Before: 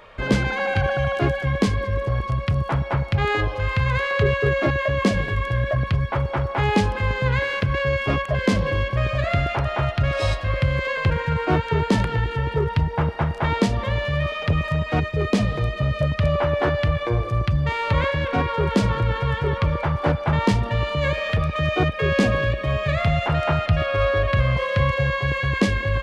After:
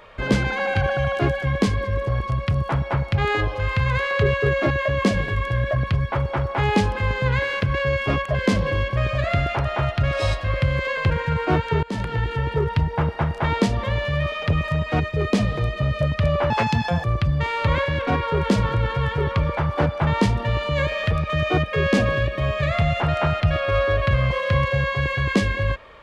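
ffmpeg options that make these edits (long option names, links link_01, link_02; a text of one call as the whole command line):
ffmpeg -i in.wav -filter_complex "[0:a]asplit=4[link_01][link_02][link_03][link_04];[link_01]atrim=end=11.83,asetpts=PTS-STARTPTS,afade=type=out:start_time=11.826:duration=0.004:curve=hsin:silence=0.105925[link_05];[link_02]atrim=start=11.83:end=16.504,asetpts=PTS-STARTPTS,afade=type=in:duration=0.54:curve=qsin:silence=0.105925[link_06];[link_03]atrim=start=16.5:end=17.3,asetpts=PTS-STARTPTS,asetrate=65268,aresample=44100[link_07];[link_04]atrim=start=17.296[link_08];[link_05][link_06]concat=n=2:v=0:a=1[link_09];[link_09][link_07]acrossfade=duration=0.004:curve1=hsin:curve2=hsin[link_10];[link_10][link_08]acrossfade=duration=0.004:curve1=hsin:curve2=hsin" out.wav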